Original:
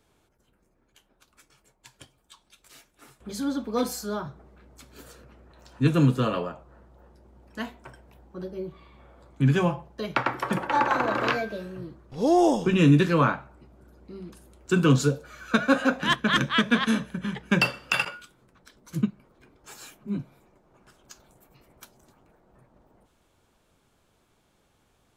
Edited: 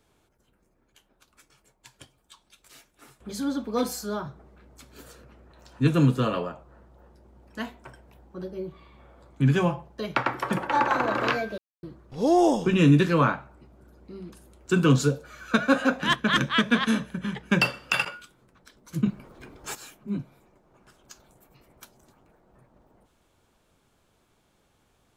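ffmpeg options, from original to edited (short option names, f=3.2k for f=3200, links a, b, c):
-filter_complex "[0:a]asplit=5[a][b][c][d][e];[a]atrim=end=11.58,asetpts=PTS-STARTPTS,afade=t=out:st=11.576:d=0.004:c=hsin[f];[b]atrim=start=11.58:end=11.83,asetpts=PTS-STARTPTS,volume=0[g];[c]atrim=start=11.83:end=19.062,asetpts=PTS-STARTPTS,afade=t=in:d=0.004:c=hsin[h];[d]atrim=start=19.058:end=19.752,asetpts=PTS-STARTPTS,volume=10.5dB[i];[e]atrim=start=19.748[j];[f][g][h]concat=n=3:v=0:a=1[k];[k][i]acrossfade=d=0.004:c1=hsin:c2=hsin[l];[l][j]acrossfade=d=0.004:c1=hsin:c2=hsin"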